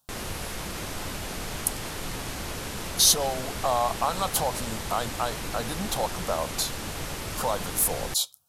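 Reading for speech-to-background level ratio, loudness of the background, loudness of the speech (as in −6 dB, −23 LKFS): 7.0 dB, −34.0 LKFS, −27.0 LKFS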